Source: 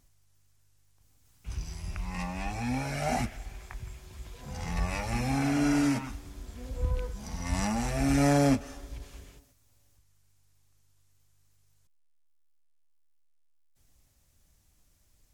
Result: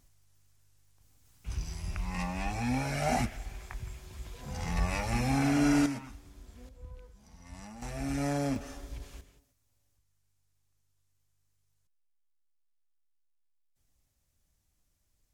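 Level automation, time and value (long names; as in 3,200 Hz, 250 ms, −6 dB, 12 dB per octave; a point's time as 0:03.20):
+0.5 dB
from 0:05.86 −8 dB
from 0:06.69 −17.5 dB
from 0:07.82 −8 dB
from 0:08.56 −0.5 dB
from 0:09.21 −9 dB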